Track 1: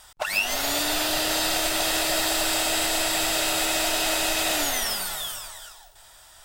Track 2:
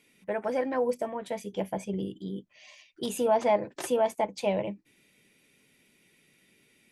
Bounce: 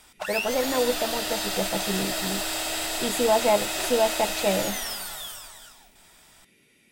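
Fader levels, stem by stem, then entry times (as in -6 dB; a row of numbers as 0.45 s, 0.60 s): -5.0 dB, +3.0 dB; 0.00 s, 0.00 s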